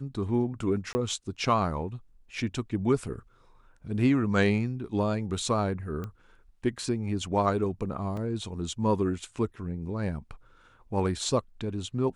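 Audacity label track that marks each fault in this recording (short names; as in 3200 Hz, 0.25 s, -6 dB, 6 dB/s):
0.930000	0.950000	gap 20 ms
6.040000	6.040000	pop -24 dBFS
8.170000	8.170000	gap 3.2 ms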